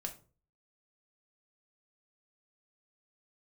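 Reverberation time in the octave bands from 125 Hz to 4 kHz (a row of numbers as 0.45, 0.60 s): 0.60, 0.45, 0.45, 0.35, 0.25, 0.25 s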